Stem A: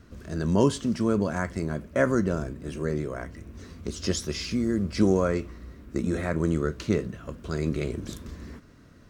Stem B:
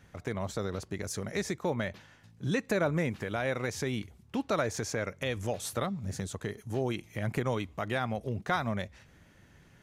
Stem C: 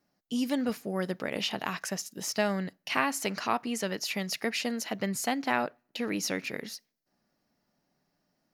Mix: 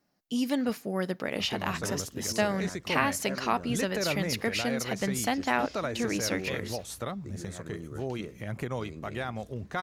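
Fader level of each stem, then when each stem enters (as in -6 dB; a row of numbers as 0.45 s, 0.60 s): -16.5 dB, -3.0 dB, +1.0 dB; 1.30 s, 1.25 s, 0.00 s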